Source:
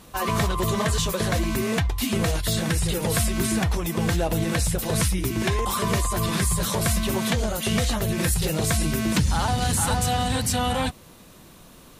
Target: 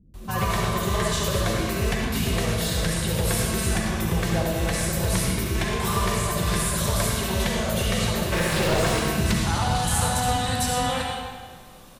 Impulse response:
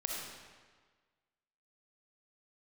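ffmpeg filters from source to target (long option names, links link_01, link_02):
-filter_complex "[0:a]asettb=1/sr,asplit=3[link_01][link_02][link_03];[link_01]atrim=end=8.184[link_04];[link_02]atrim=start=8.18:end=8.85,asetpts=PTS-STARTPTS,afade=type=in:duration=0.004:curve=qsin,afade=type=out:start_time=0.666:duration=0.004:curve=qsin,asplit=2[link_05][link_06];[link_06]highpass=frequency=720:poles=1,volume=31dB,asoftclip=type=tanh:threshold=-11.5dB[link_07];[link_05][link_07]amix=inputs=2:normalize=0,lowpass=frequency=1500:poles=1,volume=-6dB[link_08];[link_03]atrim=start=8.846[link_09];[link_04][link_08]acrossfade=duration=0.004:curve1=hsin:curve2=qsin[link_10];[link_10][link_09]acrossfade=duration=0.004:curve1=qsin:curve2=hsin,acrossover=split=280[link_11][link_12];[link_12]adelay=140[link_13];[link_11][link_13]amix=inputs=2:normalize=0[link_14];[1:a]atrim=start_sample=2205,asetrate=40131,aresample=44100[link_15];[link_14][link_15]afir=irnorm=-1:irlink=0,volume=-2.5dB"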